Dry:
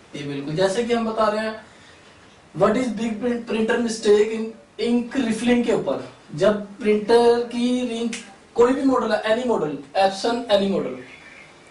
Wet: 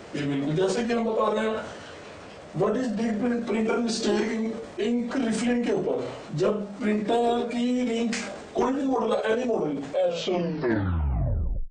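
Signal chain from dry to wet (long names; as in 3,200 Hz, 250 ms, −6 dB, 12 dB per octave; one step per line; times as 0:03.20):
turntable brake at the end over 1.78 s
parametric band 640 Hz +9 dB 0.76 octaves
downward compressor 4 to 1, threshold −26 dBFS, peak gain reduction 17.5 dB
formants moved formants −3 semitones
transient designer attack −3 dB, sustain +5 dB
level +3 dB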